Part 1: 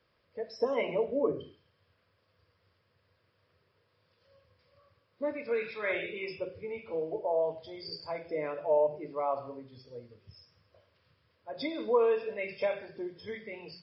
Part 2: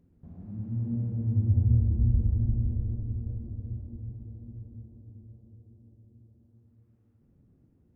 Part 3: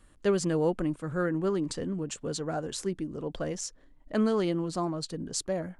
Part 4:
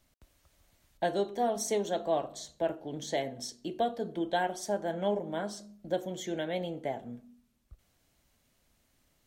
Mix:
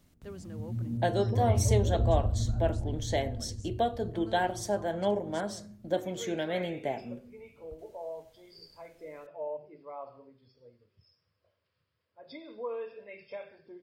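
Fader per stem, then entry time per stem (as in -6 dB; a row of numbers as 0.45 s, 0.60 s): -11.0 dB, -3.5 dB, -19.5 dB, +1.5 dB; 0.70 s, 0.00 s, 0.00 s, 0.00 s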